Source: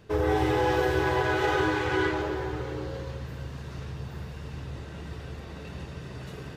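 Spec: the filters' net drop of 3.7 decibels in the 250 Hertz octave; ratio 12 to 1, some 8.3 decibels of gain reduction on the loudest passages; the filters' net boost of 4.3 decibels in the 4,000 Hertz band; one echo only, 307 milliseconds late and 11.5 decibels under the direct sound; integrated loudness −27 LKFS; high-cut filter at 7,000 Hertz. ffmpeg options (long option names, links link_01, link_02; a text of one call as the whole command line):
ffmpeg -i in.wav -af "lowpass=7000,equalizer=frequency=250:width_type=o:gain=-6,equalizer=frequency=4000:width_type=o:gain=6,acompressor=threshold=-30dB:ratio=12,aecho=1:1:307:0.266,volume=9dB" out.wav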